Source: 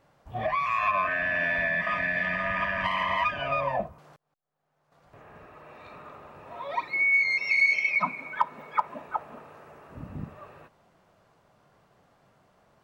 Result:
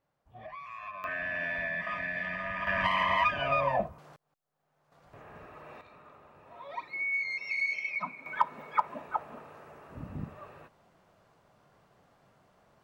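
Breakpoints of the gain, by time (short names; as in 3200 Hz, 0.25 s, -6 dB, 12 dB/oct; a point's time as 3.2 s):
-17 dB
from 1.04 s -7 dB
from 2.67 s 0 dB
from 5.81 s -9 dB
from 8.26 s -1.5 dB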